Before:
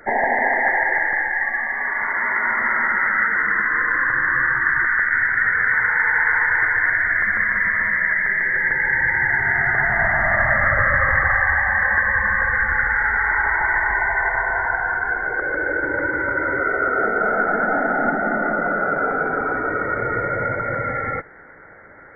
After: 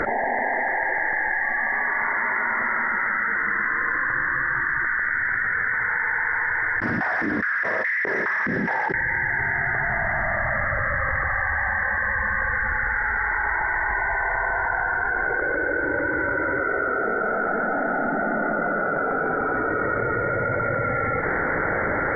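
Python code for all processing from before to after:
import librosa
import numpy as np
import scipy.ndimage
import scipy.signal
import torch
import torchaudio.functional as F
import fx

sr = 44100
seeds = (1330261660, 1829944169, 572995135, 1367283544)

y = fx.chain(x, sr, fx.air_absorb(metres=88.0),
    fx.clip_hard(threshold_db=-22.0),
    fx.filter_held_bandpass(hz=4.8, low_hz=220.0, high_hz=2000.0), at=(6.8, 8.94))
y = fx.lowpass(y, sr, hz=1800.0, slope=6)
y = fx.env_flatten(y, sr, amount_pct=100)
y = y * librosa.db_to_amplitude(-6.5)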